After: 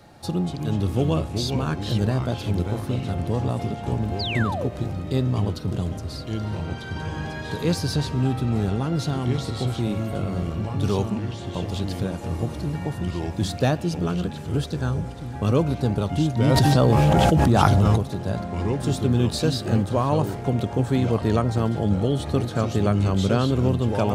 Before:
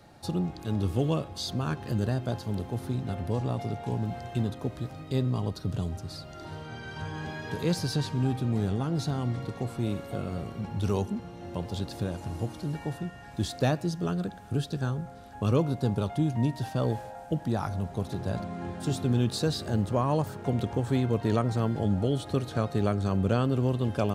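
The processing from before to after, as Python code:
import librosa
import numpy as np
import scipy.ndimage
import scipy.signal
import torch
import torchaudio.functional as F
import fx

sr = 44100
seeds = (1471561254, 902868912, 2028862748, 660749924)

y = fx.echo_pitch(x, sr, ms=193, semitones=-3, count=3, db_per_echo=-6.0)
y = fx.spec_paint(y, sr, seeds[0], shape='fall', start_s=4.19, length_s=0.5, low_hz=370.0, high_hz=5100.0, level_db=-34.0)
y = fx.env_flatten(y, sr, amount_pct=100, at=(16.46, 17.96), fade=0.02)
y = y * 10.0 ** (4.5 / 20.0)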